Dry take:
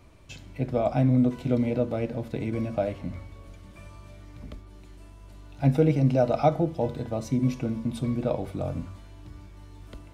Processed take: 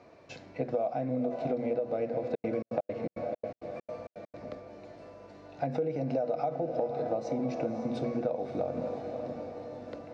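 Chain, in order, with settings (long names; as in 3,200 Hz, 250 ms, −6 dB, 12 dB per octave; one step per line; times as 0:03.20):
brickwall limiter −17 dBFS, peak gain reduction 9 dB
loudspeaker in its box 180–5,500 Hz, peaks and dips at 490 Hz +10 dB, 710 Hz +9 dB, 1,700 Hz +3 dB, 3,200 Hz −9 dB
mains-hum notches 60/120/180/240 Hz
feedback delay with all-pass diffusion 524 ms, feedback 53%, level −11 dB
0:02.29–0:04.38: gate pattern "xx.xx.x." 166 BPM −60 dB
downward compressor 6 to 1, threshold −28 dBFS, peak gain reduction 12.5 dB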